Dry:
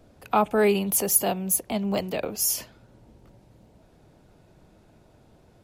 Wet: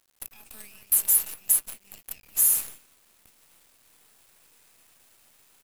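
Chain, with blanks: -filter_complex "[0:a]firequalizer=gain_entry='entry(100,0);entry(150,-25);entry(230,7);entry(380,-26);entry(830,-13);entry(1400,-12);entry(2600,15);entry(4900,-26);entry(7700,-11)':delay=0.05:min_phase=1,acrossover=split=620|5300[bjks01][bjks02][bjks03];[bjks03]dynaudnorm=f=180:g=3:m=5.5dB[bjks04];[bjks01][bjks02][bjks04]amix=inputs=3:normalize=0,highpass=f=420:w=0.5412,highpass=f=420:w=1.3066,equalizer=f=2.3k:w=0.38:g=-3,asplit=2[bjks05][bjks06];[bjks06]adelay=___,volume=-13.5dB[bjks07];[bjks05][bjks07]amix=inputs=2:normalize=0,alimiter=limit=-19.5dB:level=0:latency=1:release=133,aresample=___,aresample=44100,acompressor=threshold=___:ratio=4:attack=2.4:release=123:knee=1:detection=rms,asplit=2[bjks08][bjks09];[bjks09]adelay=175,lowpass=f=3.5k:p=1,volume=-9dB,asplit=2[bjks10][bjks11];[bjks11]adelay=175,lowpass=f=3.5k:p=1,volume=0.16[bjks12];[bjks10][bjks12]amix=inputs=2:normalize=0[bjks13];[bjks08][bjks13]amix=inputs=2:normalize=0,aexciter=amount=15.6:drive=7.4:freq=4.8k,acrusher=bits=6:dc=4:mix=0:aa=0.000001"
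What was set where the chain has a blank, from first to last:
17, 32000, -48dB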